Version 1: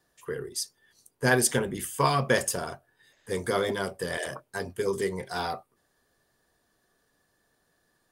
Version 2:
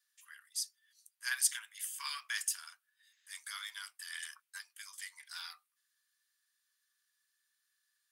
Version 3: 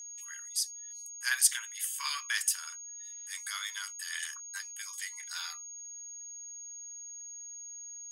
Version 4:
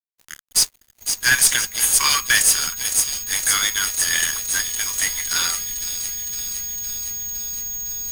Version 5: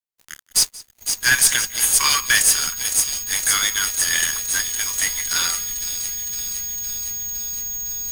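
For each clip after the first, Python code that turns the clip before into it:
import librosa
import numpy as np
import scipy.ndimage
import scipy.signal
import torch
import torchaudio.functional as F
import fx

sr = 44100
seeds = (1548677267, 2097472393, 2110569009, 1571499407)

y1 = scipy.signal.sosfilt(scipy.signal.bessel(8, 2300.0, 'highpass', norm='mag', fs=sr, output='sos'), x)
y1 = y1 * librosa.db_to_amplitude(-4.5)
y2 = y1 + 10.0 ** (-48.0 / 20.0) * np.sin(2.0 * np.pi * 6600.0 * np.arange(len(y1)) / sr)
y2 = y2 * librosa.db_to_amplitude(5.5)
y3 = fx.echo_wet_highpass(y2, sr, ms=510, feedback_pct=71, hz=3600.0, wet_db=-7.5)
y3 = fx.dmg_noise_colour(y3, sr, seeds[0], colour='brown', level_db=-59.0)
y3 = fx.fuzz(y3, sr, gain_db=31.0, gate_db=-39.0)
y3 = y3 * librosa.db_to_amplitude(3.0)
y4 = y3 + 10.0 ** (-21.5 / 20.0) * np.pad(y3, (int(180 * sr / 1000.0), 0))[:len(y3)]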